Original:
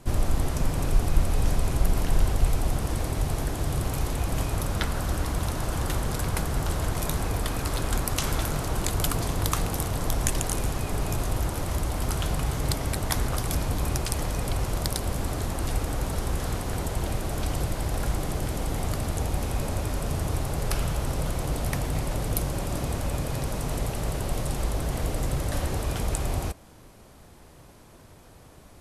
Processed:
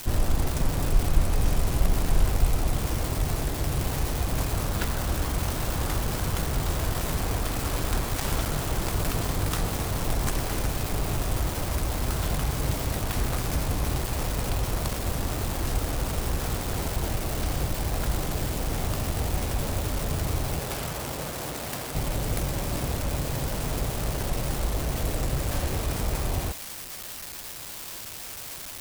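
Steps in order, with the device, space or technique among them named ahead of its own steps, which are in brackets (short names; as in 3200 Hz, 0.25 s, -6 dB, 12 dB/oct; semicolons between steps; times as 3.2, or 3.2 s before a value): budget class-D amplifier (switching dead time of 0.24 ms; switching spikes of -18.5 dBFS); 20.58–21.94 HPF 150 Hz -> 440 Hz 6 dB/oct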